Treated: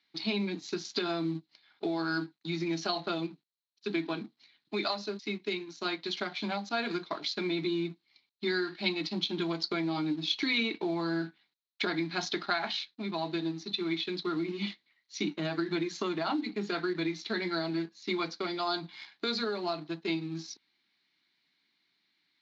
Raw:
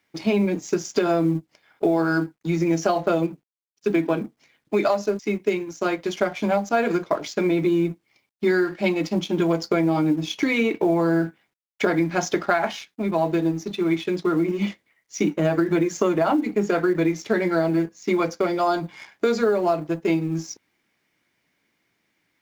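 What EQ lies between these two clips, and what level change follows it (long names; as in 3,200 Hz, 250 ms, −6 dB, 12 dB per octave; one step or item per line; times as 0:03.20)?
high-pass filter 180 Hz 12 dB per octave
low-pass with resonance 4,100 Hz, resonance Q 9.2
parametric band 530 Hz −13 dB 0.55 octaves
−8.5 dB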